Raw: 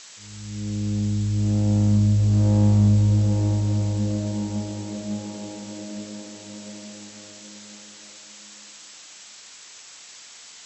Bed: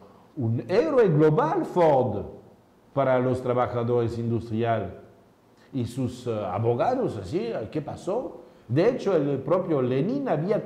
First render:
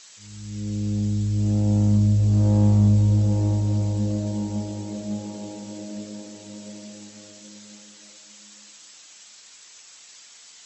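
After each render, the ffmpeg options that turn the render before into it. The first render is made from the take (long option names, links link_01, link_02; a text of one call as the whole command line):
ffmpeg -i in.wav -af "afftdn=noise_reduction=6:noise_floor=-45" out.wav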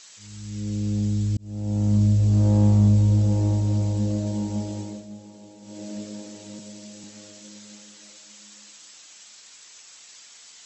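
ffmpeg -i in.wav -filter_complex "[0:a]asettb=1/sr,asplit=3[link_01][link_02][link_03];[link_01]atrim=end=6.594[link_04];[link_02]atrim=start=6.59:end=7.04,asetpts=PTS-STARTPTS,afade=type=in:duration=0.004:curve=qsin,afade=type=out:start_time=0.446:duration=0.004:curve=qsin,acrossover=split=150|3000[link_05][link_06][link_07];[link_06]acompressor=threshold=-46dB:ratio=1.5:attack=3.2:release=140:knee=2.83:detection=peak[link_08];[link_05][link_08][link_07]amix=inputs=3:normalize=0[link_09];[link_03]atrim=start=7.036[link_10];[link_04][link_09]acrossfade=duration=0.004:curve1=hsin:curve2=qsin[link_11];[link_11][link_10]acrossfade=duration=0.004:curve1=qsin:curve2=hsin,asplit=4[link_12][link_13][link_14][link_15];[link_12]atrim=end=1.37,asetpts=PTS-STARTPTS,afade=type=out:start_time=1.366:duration=0.004:curve=hsin[link_16];[link_13]atrim=start=1.37:end=5.07,asetpts=PTS-STARTPTS,afade=type=in:duration=0.65,afade=type=out:start_time=3.43:duration=0.27:silence=0.281838[link_17];[link_14]atrim=start=5.07:end=5.6,asetpts=PTS-STARTPTS,volume=-11dB[link_18];[link_15]atrim=start=5.6,asetpts=PTS-STARTPTS,afade=type=in:duration=0.27:silence=0.281838[link_19];[link_16][link_17][link_18][link_19]concat=n=4:v=0:a=1" out.wav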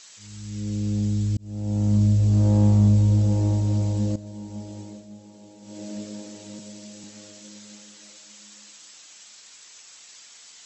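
ffmpeg -i in.wav -filter_complex "[0:a]asplit=2[link_01][link_02];[link_01]atrim=end=4.16,asetpts=PTS-STARTPTS,afade=type=out:start_time=4.156:duration=0.004:curve=hsin:silence=0.199526[link_03];[link_02]atrim=start=4.16,asetpts=PTS-STARTPTS,afade=type=in:duration=1.6:silence=0.199526[link_04];[link_03][link_04]concat=n=2:v=0:a=1" out.wav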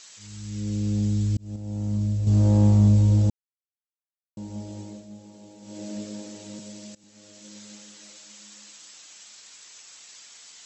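ffmpeg -i in.wav -filter_complex "[0:a]asplit=6[link_01][link_02][link_03][link_04][link_05][link_06];[link_01]atrim=end=1.562[link_07];[link_02]atrim=start=1.558:end=2.272,asetpts=PTS-STARTPTS,volume=-6.5dB[link_08];[link_03]atrim=start=2.268:end=3.3,asetpts=PTS-STARTPTS,afade=type=out:start_time=1.028:duration=0.004:curve=hsin[link_09];[link_04]atrim=start=3.3:end=4.37,asetpts=PTS-STARTPTS,volume=0[link_10];[link_05]atrim=start=4.37:end=6.95,asetpts=PTS-STARTPTS,afade=type=in:duration=0.004:curve=hsin,afade=type=out:start_time=2.576:duration=0.004:curve=hsin:silence=0.0841395[link_11];[link_06]atrim=start=6.95,asetpts=PTS-STARTPTS,afade=type=in:duration=0.64:silence=0.0841395[link_12];[link_07][link_08]acrossfade=duration=0.004:curve1=hsin:curve2=hsin[link_13];[link_09][link_10][link_11][link_12]concat=n=4:v=0:a=1[link_14];[link_13][link_14]acrossfade=duration=0.004:curve1=hsin:curve2=hsin" out.wav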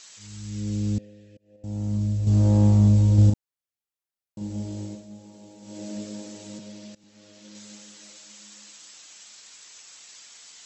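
ffmpeg -i in.wav -filter_complex "[0:a]asettb=1/sr,asplit=3[link_01][link_02][link_03];[link_01]atrim=end=0.984[link_04];[link_02]atrim=start=0.98:end=1.64,asetpts=PTS-STARTPTS,afade=type=in:duration=0.004:curve=qsin,afade=type=out:start_time=0.656:duration=0.004:curve=qsin,asplit=3[link_05][link_06][link_07];[link_05]bandpass=frequency=530:width_type=q:width=8,volume=0dB[link_08];[link_06]bandpass=frequency=1840:width_type=q:width=8,volume=-6dB[link_09];[link_07]bandpass=frequency=2480:width_type=q:width=8,volume=-9dB[link_10];[link_08][link_09][link_10]amix=inputs=3:normalize=0[link_11];[link_03]atrim=start=1.636[link_12];[link_04][link_11]acrossfade=duration=0.004:curve1=hsin:curve2=qsin[link_13];[link_13][link_12]acrossfade=duration=0.004:curve1=qsin:curve2=hsin,asettb=1/sr,asplit=3[link_14][link_15][link_16];[link_14]atrim=end=3.144[link_17];[link_15]atrim=start=3.14:end=4.95,asetpts=PTS-STARTPTS,afade=type=in:duration=0.004:curve=qsin,afade=type=out:start_time=1.806:duration=0.004:curve=qsin,asplit=2[link_18][link_19];[link_19]adelay=39,volume=-2dB[link_20];[link_18][link_20]amix=inputs=2:normalize=0,atrim=end_sample=79821[link_21];[link_16]atrim=start=4.946[link_22];[link_17][link_21]acrossfade=duration=0.004:curve1=hsin:curve2=qsin[link_23];[link_23][link_22]acrossfade=duration=0.004:curve1=qsin:curve2=hsin,asettb=1/sr,asplit=3[link_24][link_25][link_26];[link_24]atrim=end=6.584[link_27];[link_25]atrim=start=6.58:end=7.55,asetpts=PTS-STARTPTS,afade=type=in:duration=0.004:curve=qsin,afade=type=out:start_time=0.966:duration=0.004:curve=qsin,lowpass=5200[link_28];[link_26]atrim=start=7.546[link_29];[link_27][link_28]acrossfade=duration=0.004:curve1=hsin:curve2=qsin[link_30];[link_30][link_29]acrossfade=duration=0.004:curve1=qsin:curve2=hsin" out.wav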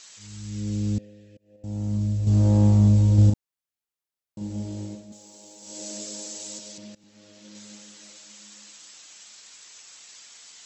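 ffmpeg -i in.wav -filter_complex "[0:a]asettb=1/sr,asplit=3[link_01][link_02][link_03];[link_01]atrim=end=5.124[link_04];[link_02]atrim=start=5.12:end=6.78,asetpts=PTS-STARTPTS,afade=type=in:duration=0.004:curve=qsin,afade=type=out:start_time=1.656:duration=0.004:curve=qsin,bass=frequency=250:gain=-14,treble=frequency=4000:gain=13[link_05];[link_03]atrim=start=6.776[link_06];[link_04][link_05]acrossfade=duration=0.004:curve1=hsin:curve2=qsin[link_07];[link_07][link_06]acrossfade=duration=0.004:curve1=qsin:curve2=hsin" out.wav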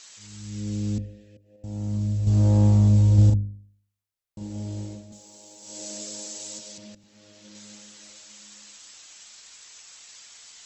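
ffmpeg -i in.wav -af "bandreject=frequency=50.56:width_type=h:width=4,bandreject=frequency=101.12:width_type=h:width=4,bandreject=frequency=151.68:width_type=h:width=4,bandreject=frequency=202.24:width_type=h:width=4,bandreject=frequency=252.8:width_type=h:width=4,bandreject=frequency=303.36:width_type=h:width=4,bandreject=frequency=353.92:width_type=h:width=4,bandreject=frequency=404.48:width_type=h:width=4,bandreject=frequency=455.04:width_type=h:width=4,bandreject=frequency=505.6:width_type=h:width=4,bandreject=frequency=556.16:width_type=h:width=4,bandreject=frequency=606.72:width_type=h:width=4,asubboost=boost=2.5:cutoff=110" out.wav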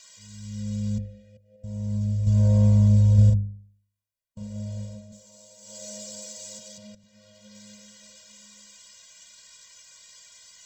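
ffmpeg -i in.wav -filter_complex "[0:a]acrossover=split=2500[link_01][link_02];[link_02]acrusher=bits=5:mode=log:mix=0:aa=0.000001[link_03];[link_01][link_03]amix=inputs=2:normalize=0,afftfilt=real='re*eq(mod(floor(b*sr/1024/230),2),0)':imag='im*eq(mod(floor(b*sr/1024/230),2),0)':win_size=1024:overlap=0.75" out.wav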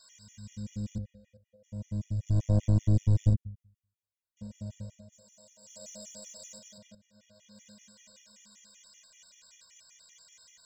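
ffmpeg -i in.wav -af "aeval=exprs='(tanh(4.47*val(0)+0.75)-tanh(0.75))/4.47':channel_layout=same,afftfilt=real='re*gt(sin(2*PI*5.2*pts/sr)*(1-2*mod(floor(b*sr/1024/1800),2)),0)':imag='im*gt(sin(2*PI*5.2*pts/sr)*(1-2*mod(floor(b*sr/1024/1800),2)),0)':win_size=1024:overlap=0.75" out.wav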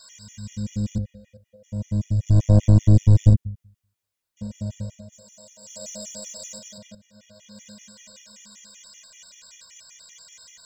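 ffmpeg -i in.wav -af "volume=10dB" out.wav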